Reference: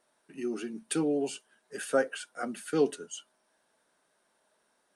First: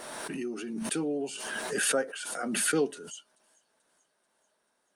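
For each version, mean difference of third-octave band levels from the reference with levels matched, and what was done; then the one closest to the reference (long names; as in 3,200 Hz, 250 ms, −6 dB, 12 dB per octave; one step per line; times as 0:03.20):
6.0 dB: delay with a high-pass on its return 436 ms, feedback 59%, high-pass 4,400 Hz, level −23 dB
background raised ahead of every attack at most 25 dB per second
level −3 dB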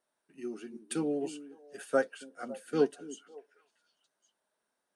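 4.5 dB: on a send: echo through a band-pass that steps 278 ms, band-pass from 250 Hz, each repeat 1.4 octaves, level −7 dB
on the sum: expander for the loud parts 1.5 to 1, over −42 dBFS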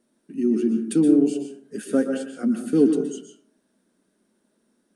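8.5 dB: drawn EQ curve 150 Hz 0 dB, 220 Hz +12 dB, 770 Hz −14 dB, 8,200 Hz −7 dB
dense smooth reverb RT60 0.59 s, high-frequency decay 0.45×, pre-delay 110 ms, DRR 5 dB
level +7 dB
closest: second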